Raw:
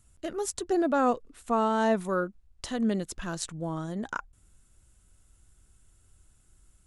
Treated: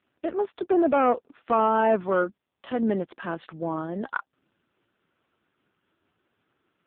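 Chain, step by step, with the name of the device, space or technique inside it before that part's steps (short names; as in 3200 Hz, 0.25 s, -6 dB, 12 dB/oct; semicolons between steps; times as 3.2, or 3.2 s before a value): telephone (BPF 280–3000 Hz; soft clip -21 dBFS, distortion -14 dB; gain +8 dB; AMR-NB 5.15 kbps 8000 Hz)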